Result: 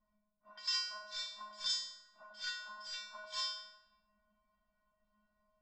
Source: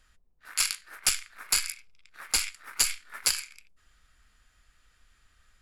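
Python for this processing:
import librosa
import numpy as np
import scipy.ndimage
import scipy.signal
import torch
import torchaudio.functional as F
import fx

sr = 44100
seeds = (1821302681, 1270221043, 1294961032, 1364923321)

p1 = fx.env_lowpass(x, sr, base_hz=910.0, full_db=-24.5)
p2 = fx.over_compress(p1, sr, threshold_db=-35.0, ratio=-0.5)
p3 = fx.formant_shift(p2, sr, semitones=-6)
p4 = fx.lowpass_res(p3, sr, hz=4900.0, q=5.5)
p5 = fx.comb_fb(p4, sr, f0_hz=210.0, decay_s=0.62, harmonics='odd', damping=0.0, mix_pct=100)
p6 = p5 + fx.echo_wet_bandpass(p5, sr, ms=89, feedback_pct=59, hz=610.0, wet_db=-4, dry=0)
y = p6 * 10.0 ** (10.0 / 20.0)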